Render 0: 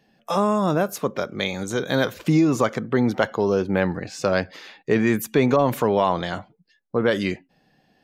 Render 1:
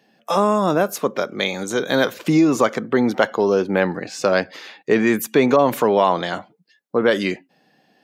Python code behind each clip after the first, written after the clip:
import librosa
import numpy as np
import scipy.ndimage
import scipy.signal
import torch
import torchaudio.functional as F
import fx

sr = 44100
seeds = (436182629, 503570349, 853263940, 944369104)

y = scipy.signal.sosfilt(scipy.signal.butter(2, 210.0, 'highpass', fs=sr, output='sos'), x)
y = F.gain(torch.from_numpy(y), 4.0).numpy()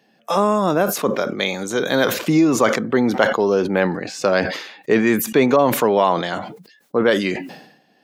y = fx.sustainer(x, sr, db_per_s=73.0)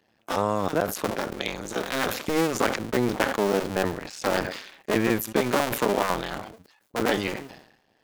y = fx.cycle_switch(x, sr, every=2, mode='muted')
y = F.gain(torch.from_numpy(y), -5.0).numpy()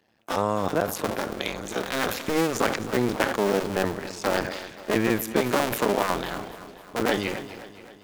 y = fx.echo_feedback(x, sr, ms=263, feedback_pct=58, wet_db=-15)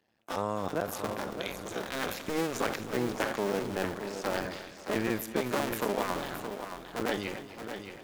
y = x + 10.0 ** (-8.5 / 20.0) * np.pad(x, (int(621 * sr / 1000.0), 0))[:len(x)]
y = F.gain(torch.from_numpy(y), -7.5).numpy()